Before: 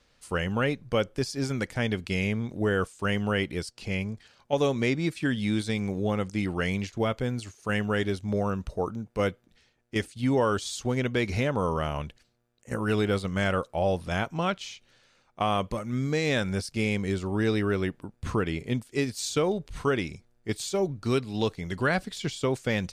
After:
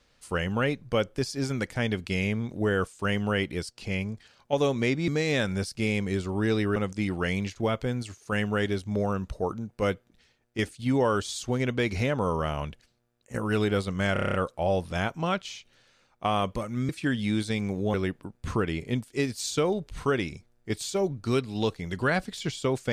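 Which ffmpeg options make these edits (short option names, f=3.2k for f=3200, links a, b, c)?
-filter_complex "[0:a]asplit=12[a][b][c][d][e][f][g][h][i][j][k][l];[a]atrim=end=5.082[m];[b]atrim=start=16.048:end=17.732[n];[c]atrim=start=6.128:end=13.532[o];[d]atrim=start=13.498:end=13.532[p];[e]atrim=start=13.498:end=13.532[q];[f]atrim=start=13.498:end=13.532[r];[g]atrim=start=13.498:end=13.532[s];[h]atrim=start=13.498:end=13.532[t];[i]atrim=start=13.498:end=13.532[u];[j]atrim=start=13.498:end=16.052[v];[k]atrim=start=5.078:end=6.132[w];[l]atrim=start=17.728[x];[m][n]acrossfade=d=0.004:c1=hsin:c2=hsin[y];[y][o]acrossfade=d=0.004:c1=hsin:c2=hsin[z];[z][p]acrossfade=d=0.004:c1=hsin:c2=hsin[aa];[aa][q]acrossfade=d=0.004:c1=hsin:c2=hsin[ab];[ab][r]acrossfade=d=0.004:c1=hsin:c2=hsin[ac];[ac][s]acrossfade=d=0.004:c1=hsin:c2=hsin[ad];[ad][t]acrossfade=d=0.004:c1=hsin:c2=hsin[ae];[ae][u]acrossfade=d=0.004:c1=hsin:c2=hsin[af];[af][v]acrossfade=d=0.004:c1=hsin:c2=hsin[ag];[ag][w]acrossfade=d=0.004:c1=hsin:c2=hsin[ah];[ah][x]acrossfade=d=0.004:c1=hsin:c2=hsin"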